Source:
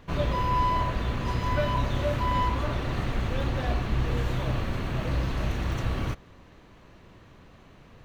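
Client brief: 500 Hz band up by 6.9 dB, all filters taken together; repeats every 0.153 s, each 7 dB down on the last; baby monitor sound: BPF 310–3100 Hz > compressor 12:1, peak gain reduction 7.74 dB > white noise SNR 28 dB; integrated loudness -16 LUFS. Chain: BPF 310–3100 Hz; bell 500 Hz +9 dB; feedback echo 0.153 s, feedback 45%, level -7 dB; compressor 12:1, threshold -24 dBFS; white noise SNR 28 dB; gain +14 dB

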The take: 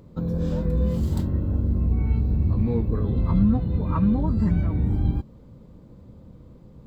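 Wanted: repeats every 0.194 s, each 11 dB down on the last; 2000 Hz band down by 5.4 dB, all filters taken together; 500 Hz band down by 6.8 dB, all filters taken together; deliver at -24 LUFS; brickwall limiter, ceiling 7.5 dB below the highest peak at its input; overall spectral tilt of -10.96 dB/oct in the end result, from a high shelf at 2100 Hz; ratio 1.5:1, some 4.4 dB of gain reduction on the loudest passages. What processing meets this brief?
bell 500 Hz -7.5 dB; bell 2000 Hz -3 dB; high shelf 2100 Hz -6.5 dB; compressor 1.5:1, threshold -29 dBFS; limiter -22.5 dBFS; feedback echo 0.194 s, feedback 28%, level -11 dB; gain +6.5 dB

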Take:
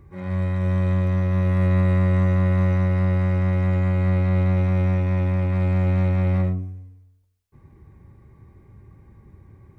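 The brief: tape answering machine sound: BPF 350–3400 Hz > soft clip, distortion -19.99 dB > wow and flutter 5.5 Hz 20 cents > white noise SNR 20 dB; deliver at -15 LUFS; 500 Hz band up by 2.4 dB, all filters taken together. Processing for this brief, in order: BPF 350–3400 Hz; bell 500 Hz +4 dB; soft clip -23 dBFS; wow and flutter 5.5 Hz 20 cents; white noise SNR 20 dB; gain +16.5 dB

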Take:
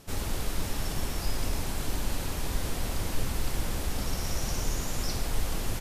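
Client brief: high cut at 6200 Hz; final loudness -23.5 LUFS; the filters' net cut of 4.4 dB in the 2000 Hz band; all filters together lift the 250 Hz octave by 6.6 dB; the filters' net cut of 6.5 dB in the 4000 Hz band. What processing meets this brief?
LPF 6200 Hz; bell 250 Hz +8.5 dB; bell 2000 Hz -4 dB; bell 4000 Hz -6.5 dB; gain +9.5 dB

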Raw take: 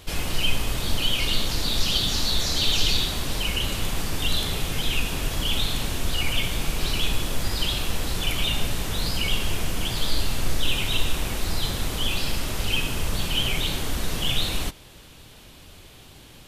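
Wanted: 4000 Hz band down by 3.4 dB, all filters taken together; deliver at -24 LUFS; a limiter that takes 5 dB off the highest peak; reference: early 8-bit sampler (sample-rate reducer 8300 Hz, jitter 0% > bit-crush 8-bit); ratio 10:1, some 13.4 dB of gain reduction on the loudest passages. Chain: bell 4000 Hz -4.5 dB; compressor 10:1, threshold -29 dBFS; limiter -25.5 dBFS; sample-rate reducer 8300 Hz, jitter 0%; bit-crush 8-bit; gain +14 dB

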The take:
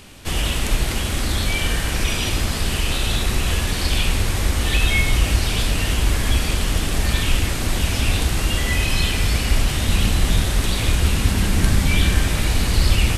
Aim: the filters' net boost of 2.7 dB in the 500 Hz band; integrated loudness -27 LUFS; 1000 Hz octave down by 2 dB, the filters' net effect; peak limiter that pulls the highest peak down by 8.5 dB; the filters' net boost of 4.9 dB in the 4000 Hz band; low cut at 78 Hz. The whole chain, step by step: HPF 78 Hz; bell 500 Hz +4.5 dB; bell 1000 Hz -4.5 dB; bell 4000 Hz +6.5 dB; gain -4.5 dB; limiter -18.5 dBFS

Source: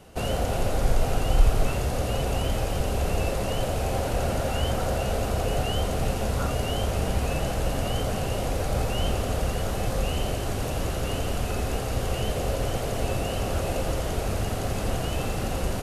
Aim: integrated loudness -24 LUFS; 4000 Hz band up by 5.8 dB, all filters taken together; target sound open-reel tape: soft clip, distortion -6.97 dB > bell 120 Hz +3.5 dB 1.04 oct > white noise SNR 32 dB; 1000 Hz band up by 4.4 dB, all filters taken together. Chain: bell 1000 Hz +6 dB; bell 4000 Hz +8 dB; soft clip -28 dBFS; bell 120 Hz +3.5 dB 1.04 oct; white noise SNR 32 dB; gain +7.5 dB

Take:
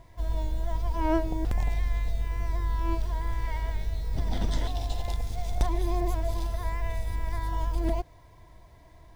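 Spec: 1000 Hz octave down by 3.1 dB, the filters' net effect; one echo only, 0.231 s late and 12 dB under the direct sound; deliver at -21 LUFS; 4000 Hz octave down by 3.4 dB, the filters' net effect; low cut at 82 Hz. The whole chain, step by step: HPF 82 Hz; bell 1000 Hz -3.5 dB; bell 4000 Hz -4 dB; echo 0.231 s -12 dB; gain +15 dB

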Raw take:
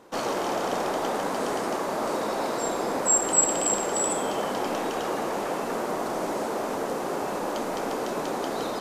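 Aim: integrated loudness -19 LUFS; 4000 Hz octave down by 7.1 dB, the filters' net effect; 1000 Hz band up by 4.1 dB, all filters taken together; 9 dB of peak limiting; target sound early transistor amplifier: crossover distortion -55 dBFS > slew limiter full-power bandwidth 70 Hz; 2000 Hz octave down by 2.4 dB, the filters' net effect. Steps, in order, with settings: bell 1000 Hz +6.5 dB; bell 2000 Hz -4.5 dB; bell 4000 Hz -8.5 dB; limiter -19 dBFS; crossover distortion -55 dBFS; slew limiter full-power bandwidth 70 Hz; gain +10 dB

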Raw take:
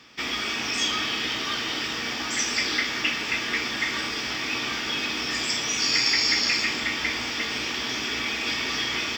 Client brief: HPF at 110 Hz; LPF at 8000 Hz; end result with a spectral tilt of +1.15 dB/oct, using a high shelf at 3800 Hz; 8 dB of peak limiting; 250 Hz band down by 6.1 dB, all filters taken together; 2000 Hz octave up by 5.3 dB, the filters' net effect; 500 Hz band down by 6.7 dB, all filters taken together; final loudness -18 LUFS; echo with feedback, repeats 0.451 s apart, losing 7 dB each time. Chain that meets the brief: HPF 110 Hz; LPF 8000 Hz; bell 250 Hz -5 dB; bell 500 Hz -7.5 dB; bell 2000 Hz +4.5 dB; high shelf 3800 Hz +7.5 dB; limiter -12.5 dBFS; feedback echo 0.451 s, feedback 45%, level -7 dB; gain +2.5 dB

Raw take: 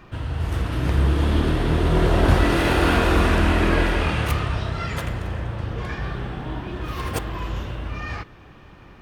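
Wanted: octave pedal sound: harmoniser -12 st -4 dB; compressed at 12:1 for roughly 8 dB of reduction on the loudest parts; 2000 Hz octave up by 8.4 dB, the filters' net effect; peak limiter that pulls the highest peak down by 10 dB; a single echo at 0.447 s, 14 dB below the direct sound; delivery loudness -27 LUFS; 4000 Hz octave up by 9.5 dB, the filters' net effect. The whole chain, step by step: bell 2000 Hz +8.5 dB; bell 4000 Hz +9 dB; compressor 12:1, threshold -19 dBFS; limiter -17.5 dBFS; echo 0.447 s -14 dB; harmoniser -12 st -4 dB; gain -1 dB

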